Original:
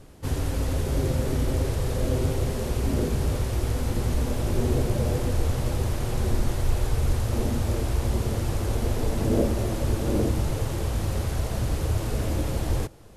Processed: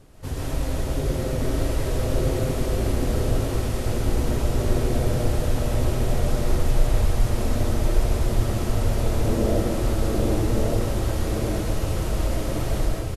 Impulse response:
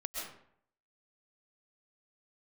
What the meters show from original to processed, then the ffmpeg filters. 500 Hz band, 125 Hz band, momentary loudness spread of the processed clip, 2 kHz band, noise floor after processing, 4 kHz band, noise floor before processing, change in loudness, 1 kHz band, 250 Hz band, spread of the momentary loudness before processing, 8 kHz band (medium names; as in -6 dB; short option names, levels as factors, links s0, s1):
+3.0 dB, +1.0 dB, 3 LU, +2.5 dB, -27 dBFS, +2.5 dB, -31 dBFS, +1.5 dB, +3.0 dB, +2.0 dB, 3 LU, +2.0 dB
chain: -filter_complex "[0:a]aecho=1:1:1168:0.668[s0];[1:a]atrim=start_sample=2205[s1];[s0][s1]afir=irnorm=-1:irlink=0"